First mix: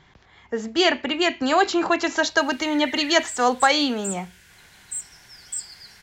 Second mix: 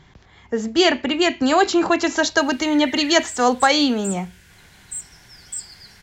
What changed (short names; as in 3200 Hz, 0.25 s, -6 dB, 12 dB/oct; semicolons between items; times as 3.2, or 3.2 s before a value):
speech: add high shelf 6500 Hz +9 dB; master: add low shelf 420 Hz +7.5 dB